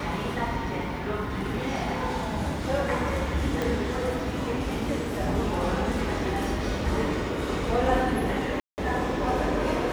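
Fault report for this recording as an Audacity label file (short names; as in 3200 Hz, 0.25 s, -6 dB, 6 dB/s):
3.620000	3.620000	pop
8.600000	8.780000	gap 0.179 s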